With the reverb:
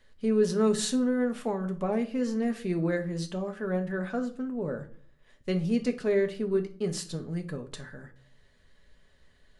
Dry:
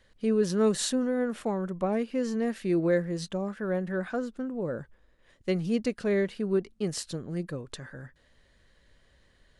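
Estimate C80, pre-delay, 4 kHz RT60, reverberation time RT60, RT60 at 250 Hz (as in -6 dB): 20.0 dB, 5 ms, 0.35 s, 0.45 s, 0.65 s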